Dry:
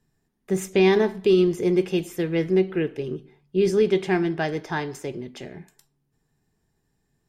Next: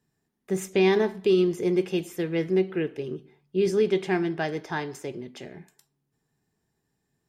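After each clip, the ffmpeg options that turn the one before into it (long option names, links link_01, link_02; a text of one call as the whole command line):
ffmpeg -i in.wav -af "highpass=frequency=110:poles=1,volume=-2.5dB" out.wav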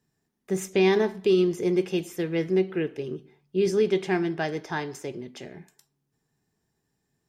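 ffmpeg -i in.wav -af "equalizer=frequency=5800:width=2.7:gain=3" out.wav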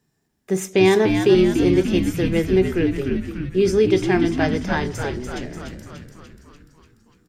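ffmpeg -i in.wav -filter_complex "[0:a]asplit=9[link_01][link_02][link_03][link_04][link_05][link_06][link_07][link_08][link_09];[link_02]adelay=293,afreqshift=-79,volume=-6dB[link_10];[link_03]adelay=586,afreqshift=-158,volume=-10.3dB[link_11];[link_04]adelay=879,afreqshift=-237,volume=-14.6dB[link_12];[link_05]adelay=1172,afreqshift=-316,volume=-18.9dB[link_13];[link_06]adelay=1465,afreqshift=-395,volume=-23.2dB[link_14];[link_07]adelay=1758,afreqshift=-474,volume=-27.5dB[link_15];[link_08]adelay=2051,afreqshift=-553,volume=-31.8dB[link_16];[link_09]adelay=2344,afreqshift=-632,volume=-36.1dB[link_17];[link_01][link_10][link_11][link_12][link_13][link_14][link_15][link_16][link_17]amix=inputs=9:normalize=0,volume=5.5dB" out.wav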